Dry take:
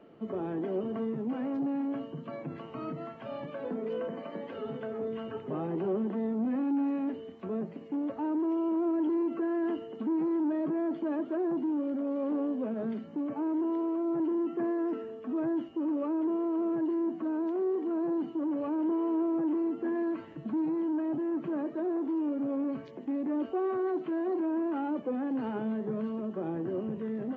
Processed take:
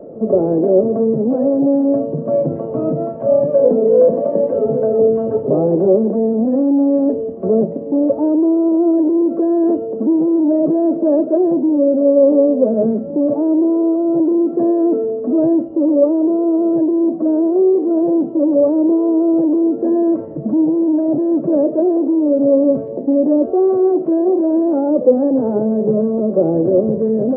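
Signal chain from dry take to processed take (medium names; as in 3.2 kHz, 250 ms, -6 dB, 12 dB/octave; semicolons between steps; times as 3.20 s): bass shelf 200 Hz +6 dB; in parallel at +3 dB: gain riding within 4 dB 0.5 s; on the sum: resonant low-pass 560 Hz, resonance Q 4.9; pre-echo 61 ms -17 dB; trim +3.5 dB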